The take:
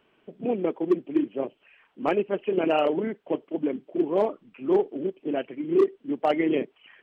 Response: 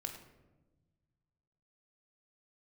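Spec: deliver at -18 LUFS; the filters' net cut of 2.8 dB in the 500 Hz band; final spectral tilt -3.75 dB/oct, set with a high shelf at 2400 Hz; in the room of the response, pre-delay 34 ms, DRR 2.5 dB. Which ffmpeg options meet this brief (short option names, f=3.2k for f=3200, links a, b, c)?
-filter_complex "[0:a]equalizer=f=500:t=o:g=-3.5,highshelf=f=2.4k:g=-7.5,asplit=2[a][b];[1:a]atrim=start_sample=2205,adelay=34[c];[b][c]afir=irnorm=-1:irlink=0,volume=-1dB[d];[a][d]amix=inputs=2:normalize=0,volume=9dB"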